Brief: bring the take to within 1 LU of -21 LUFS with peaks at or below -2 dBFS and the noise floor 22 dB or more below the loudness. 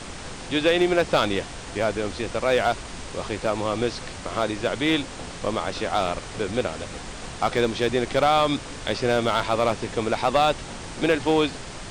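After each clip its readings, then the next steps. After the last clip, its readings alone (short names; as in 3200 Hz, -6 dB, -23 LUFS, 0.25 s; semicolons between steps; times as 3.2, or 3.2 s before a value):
clipped 0.4%; flat tops at -12.0 dBFS; noise floor -37 dBFS; noise floor target -47 dBFS; loudness -24.5 LUFS; peak -12.0 dBFS; loudness target -21.0 LUFS
-> clip repair -12 dBFS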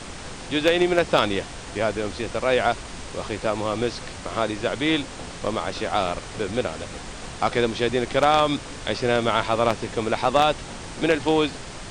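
clipped 0.0%; noise floor -37 dBFS; noise floor target -46 dBFS
-> noise print and reduce 9 dB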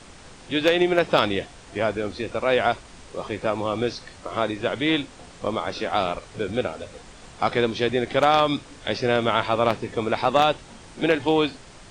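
noise floor -46 dBFS; loudness -24.0 LUFS; peak -3.0 dBFS; loudness target -21.0 LUFS
-> gain +3 dB; limiter -2 dBFS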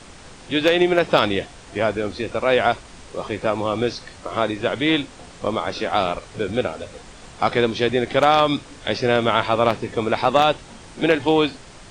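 loudness -21.0 LUFS; peak -2.0 dBFS; noise floor -43 dBFS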